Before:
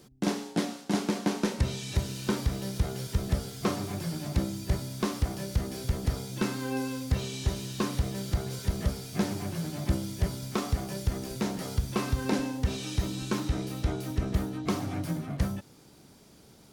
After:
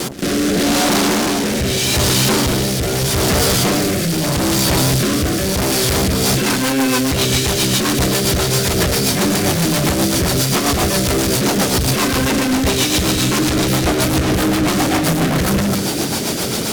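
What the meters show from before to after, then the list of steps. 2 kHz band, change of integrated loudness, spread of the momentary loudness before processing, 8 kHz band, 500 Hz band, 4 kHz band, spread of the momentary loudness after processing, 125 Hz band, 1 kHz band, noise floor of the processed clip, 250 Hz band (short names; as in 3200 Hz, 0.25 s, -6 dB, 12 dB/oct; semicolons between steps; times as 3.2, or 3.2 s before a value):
+20.5 dB, +16.5 dB, 3 LU, +23.5 dB, +17.5 dB, +22.0 dB, 3 LU, +12.0 dB, +17.5 dB, -19 dBFS, +15.0 dB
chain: reverse delay 0.127 s, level -9 dB; HPF 220 Hz 6 dB/oct; notches 50/100/150/200/250/300/350/400/450 Hz; in parallel at +1 dB: negative-ratio compressor -37 dBFS; on the sum: fuzz box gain 55 dB, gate -54 dBFS; rotary speaker horn 0.8 Hz, later 7.5 Hz, at 5.83; vibrato 2.7 Hz 34 cents; on a send: reverse echo 0.106 s -17 dB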